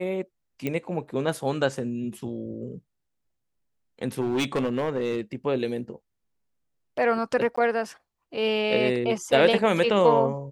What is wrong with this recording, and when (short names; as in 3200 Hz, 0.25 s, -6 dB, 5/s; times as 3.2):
0.67 pop -15 dBFS
4.2–5.21 clipped -21 dBFS
7.56–7.58 gap 15 ms